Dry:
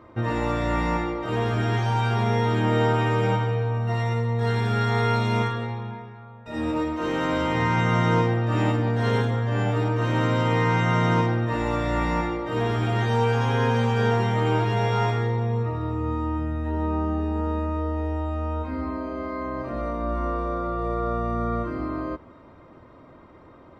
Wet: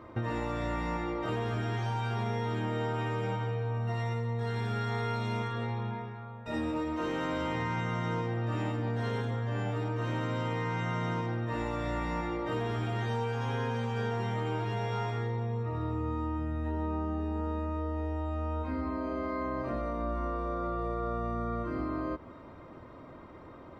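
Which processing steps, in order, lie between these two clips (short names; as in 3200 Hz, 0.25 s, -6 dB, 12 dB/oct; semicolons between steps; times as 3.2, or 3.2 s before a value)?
compressor, threshold -30 dBFS, peak gain reduction 12.5 dB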